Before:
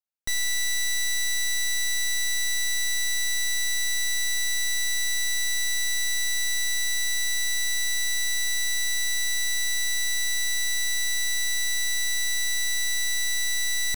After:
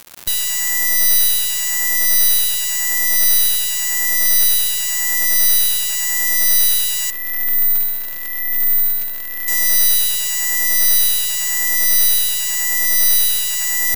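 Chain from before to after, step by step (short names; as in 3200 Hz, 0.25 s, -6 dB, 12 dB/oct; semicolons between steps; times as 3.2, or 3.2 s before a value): moving spectral ripple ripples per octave 1.4, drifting +0.92 Hz, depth 15 dB; 7.1–9.48 LPF 1500 Hz 12 dB/oct; crackle 300/s -27 dBFS; careless resampling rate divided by 3×, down none, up zero stuff; gain +1.5 dB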